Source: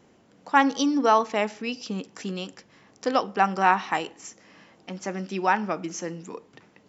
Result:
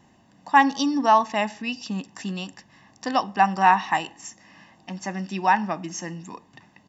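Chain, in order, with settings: comb 1.1 ms, depth 70%

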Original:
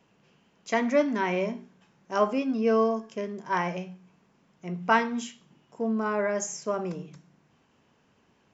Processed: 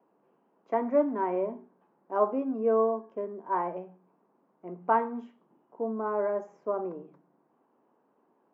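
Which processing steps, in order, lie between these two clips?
Chebyshev band-pass 300–1000 Hz, order 2

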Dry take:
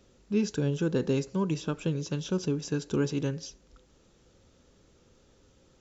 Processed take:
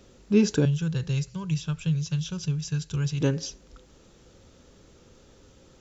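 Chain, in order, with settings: 0.65–3.21 s: FFT filter 160 Hz 0 dB, 230 Hz -25 dB, 2.9 kHz -4 dB; trim +7 dB

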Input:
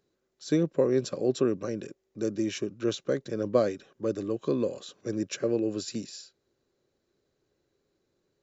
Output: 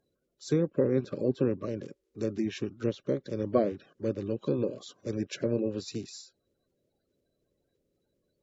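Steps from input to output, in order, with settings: coarse spectral quantiser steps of 30 dB; low-pass that closes with the level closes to 2.2 kHz, closed at -24 dBFS; trim -1 dB

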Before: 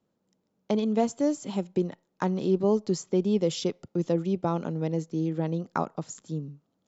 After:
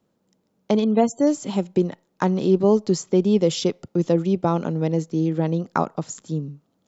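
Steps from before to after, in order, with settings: 0.84–1.27 s: loudest bins only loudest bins 64; trim +6.5 dB

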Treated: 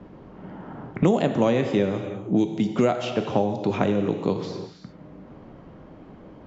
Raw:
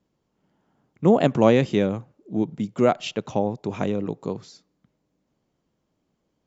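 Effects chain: level-controlled noise filter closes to 1.7 kHz, open at -16.5 dBFS; gated-style reverb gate 370 ms falling, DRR 6 dB; three bands compressed up and down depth 100%; trim -1.5 dB

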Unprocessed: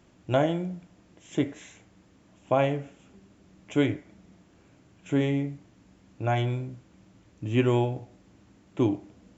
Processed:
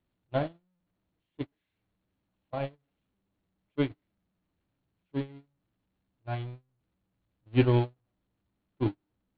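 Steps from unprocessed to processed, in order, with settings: jump at every zero crossing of -25 dBFS; Chebyshev low-pass 4.3 kHz, order 6; bass shelf 140 Hz +10.5 dB; gate -16 dBFS, range -52 dB

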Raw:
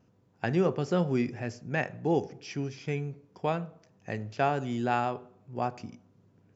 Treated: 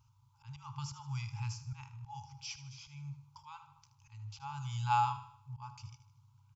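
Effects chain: slow attack 358 ms; static phaser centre 740 Hz, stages 4; on a send: feedback delay 77 ms, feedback 46%, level -13 dB; on the sum: FFT band-reject 140–810 Hz; trim +3.5 dB

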